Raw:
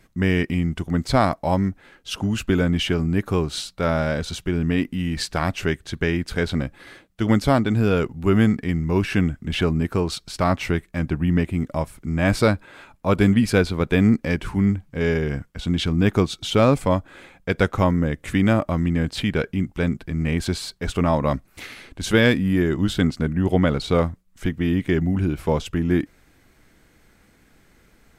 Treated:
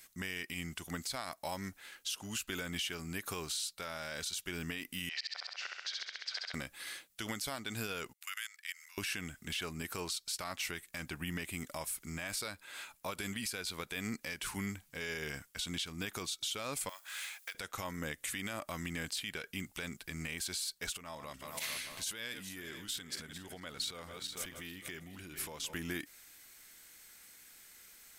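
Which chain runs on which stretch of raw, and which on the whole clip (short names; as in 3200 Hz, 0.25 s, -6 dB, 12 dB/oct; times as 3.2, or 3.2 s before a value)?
5.09–6.54 elliptic band-pass 600–5200 Hz + flipped gate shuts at -18 dBFS, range -30 dB + flutter echo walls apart 11.2 m, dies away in 1.1 s
8.13–8.98 HPF 1500 Hz 24 dB/oct + level quantiser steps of 19 dB
16.89–17.55 G.711 law mismatch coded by mu + HPF 1100 Hz + compressor 4:1, threshold -36 dBFS
20.93–25.74 regenerating reverse delay 0.223 s, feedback 62%, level -14 dB + compressor 12:1, threshold -29 dBFS
whole clip: pre-emphasis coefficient 0.97; compressor 3:1, threshold -44 dBFS; limiter -36.5 dBFS; gain +9.5 dB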